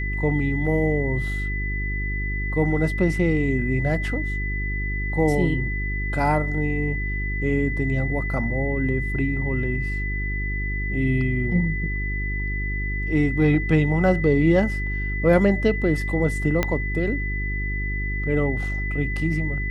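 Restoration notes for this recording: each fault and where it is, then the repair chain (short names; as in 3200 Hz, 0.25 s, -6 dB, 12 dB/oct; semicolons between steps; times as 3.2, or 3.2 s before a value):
hum 50 Hz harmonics 8 -27 dBFS
tone 2000 Hz -29 dBFS
16.63 pop -7 dBFS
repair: de-click; notch 2000 Hz, Q 30; de-hum 50 Hz, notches 8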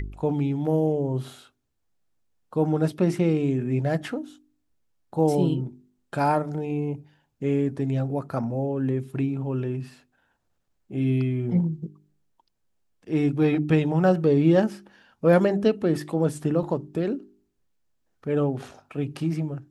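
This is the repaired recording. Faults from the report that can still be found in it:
16.63 pop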